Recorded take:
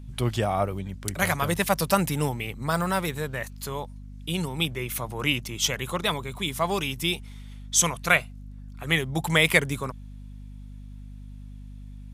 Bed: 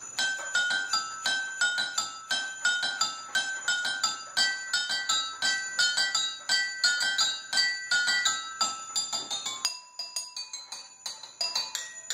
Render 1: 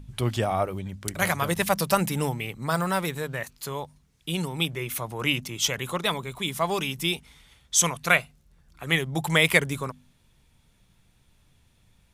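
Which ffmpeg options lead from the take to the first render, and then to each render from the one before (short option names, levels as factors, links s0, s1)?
-af "bandreject=f=50:t=h:w=4,bandreject=f=100:t=h:w=4,bandreject=f=150:t=h:w=4,bandreject=f=200:t=h:w=4,bandreject=f=250:t=h:w=4"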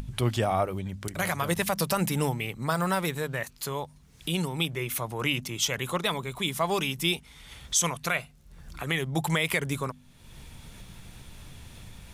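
-af "alimiter=limit=0.211:level=0:latency=1:release=95,acompressor=mode=upward:threshold=0.0316:ratio=2.5"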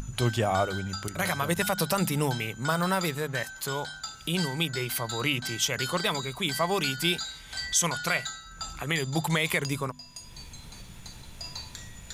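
-filter_complex "[1:a]volume=0.316[s0];[0:a][s0]amix=inputs=2:normalize=0"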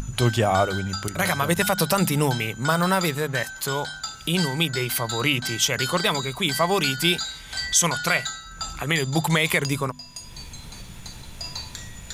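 -af "volume=1.88"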